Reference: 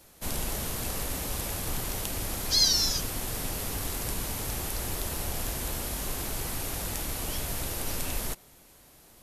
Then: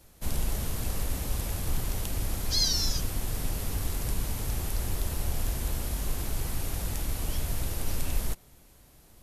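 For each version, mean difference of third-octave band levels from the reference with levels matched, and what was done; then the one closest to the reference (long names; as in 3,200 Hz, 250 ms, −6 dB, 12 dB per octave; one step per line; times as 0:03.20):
2.0 dB: low-shelf EQ 160 Hz +11 dB
level −4 dB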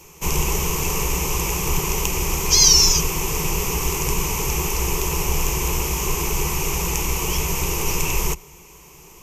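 4.0 dB: EQ curve with evenly spaced ripples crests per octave 0.75, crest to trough 15 dB
level +8.5 dB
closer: first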